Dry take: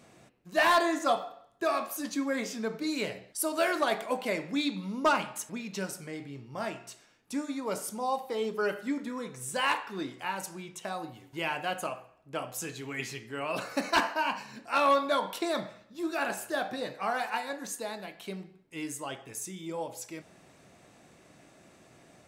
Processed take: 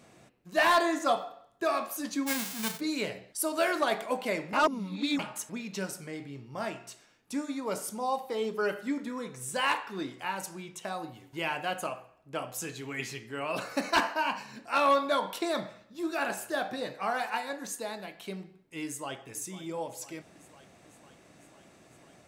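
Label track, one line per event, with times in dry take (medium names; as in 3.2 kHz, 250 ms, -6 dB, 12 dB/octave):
2.260000	2.790000	formants flattened exponent 0.1
4.530000	5.190000	reverse
18.850000	19.290000	echo throw 500 ms, feedback 75%, level -15 dB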